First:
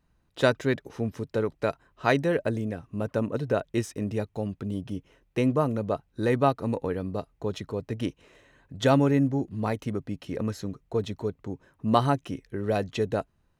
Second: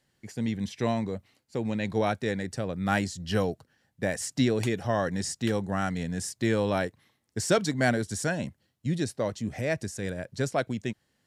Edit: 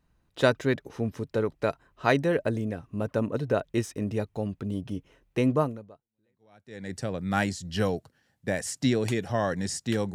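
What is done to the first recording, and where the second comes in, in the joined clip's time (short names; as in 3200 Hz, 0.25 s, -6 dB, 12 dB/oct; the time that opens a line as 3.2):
first
6.27 switch to second from 1.82 s, crossfade 1.30 s exponential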